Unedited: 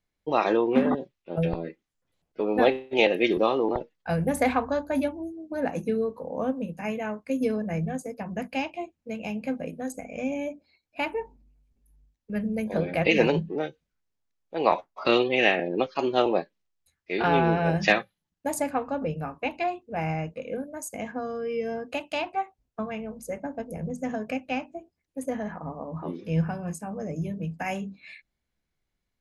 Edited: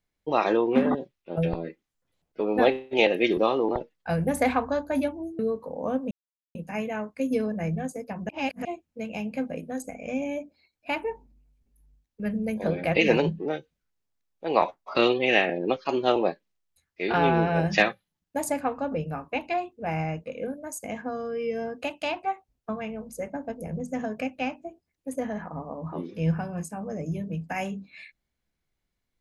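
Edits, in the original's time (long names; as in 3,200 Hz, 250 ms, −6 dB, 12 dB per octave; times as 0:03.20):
0:05.39–0:05.93: remove
0:06.65: splice in silence 0.44 s
0:08.39–0:08.75: reverse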